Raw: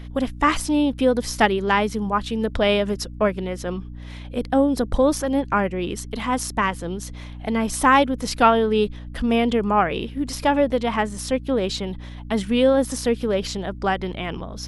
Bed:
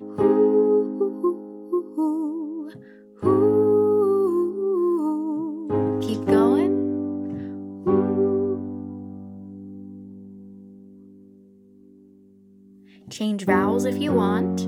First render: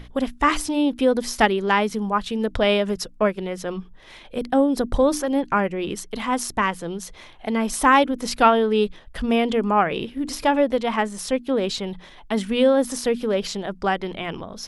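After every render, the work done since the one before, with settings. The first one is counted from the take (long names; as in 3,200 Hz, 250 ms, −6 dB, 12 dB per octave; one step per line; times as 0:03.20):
mains-hum notches 60/120/180/240/300 Hz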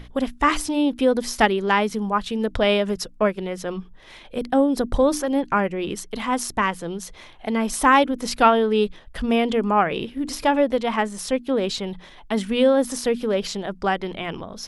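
no processing that can be heard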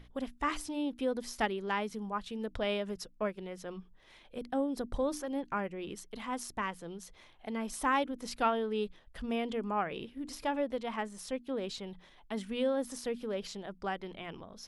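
level −14 dB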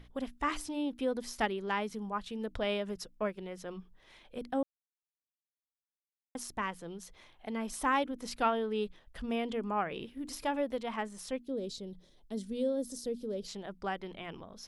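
0:04.63–0:06.35: silence
0:10.05–0:10.83: high-shelf EQ 8,500 Hz +7 dB
0:11.45–0:13.48: flat-topped bell 1,500 Hz −15 dB 2.3 octaves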